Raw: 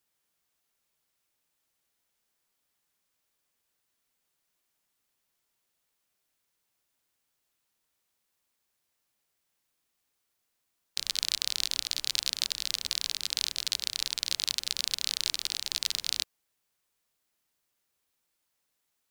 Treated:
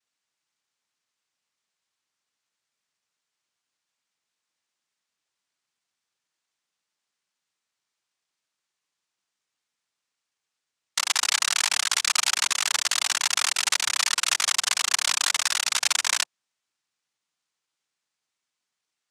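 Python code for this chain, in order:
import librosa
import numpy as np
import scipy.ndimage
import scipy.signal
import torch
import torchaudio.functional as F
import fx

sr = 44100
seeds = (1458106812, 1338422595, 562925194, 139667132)

y = fx.peak_eq(x, sr, hz=200.0, db=7.0, octaves=0.31)
y = fx.leveller(y, sr, passes=5)
y = fx.noise_vocoder(y, sr, seeds[0], bands=2)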